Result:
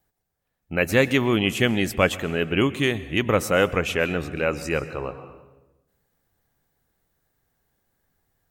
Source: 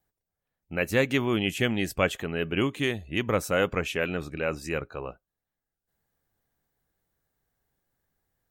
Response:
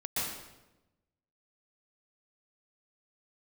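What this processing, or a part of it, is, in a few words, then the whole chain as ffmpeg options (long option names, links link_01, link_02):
compressed reverb return: -filter_complex "[0:a]asplit=2[link_01][link_02];[1:a]atrim=start_sample=2205[link_03];[link_02][link_03]afir=irnorm=-1:irlink=0,acompressor=threshold=-27dB:ratio=5,volume=-12.5dB[link_04];[link_01][link_04]amix=inputs=2:normalize=0,volume=4.5dB"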